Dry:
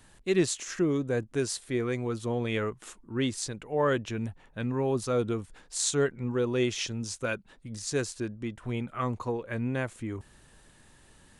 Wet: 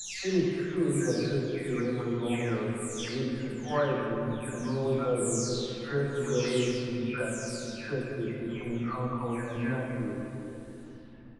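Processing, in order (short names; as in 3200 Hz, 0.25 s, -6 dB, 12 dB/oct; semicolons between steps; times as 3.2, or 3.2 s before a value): spectral delay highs early, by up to 0.567 s; speakerphone echo 90 ms, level -15 dB; shoebox room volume 150 m³, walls hard, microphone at 0.5 m; gain -3 dB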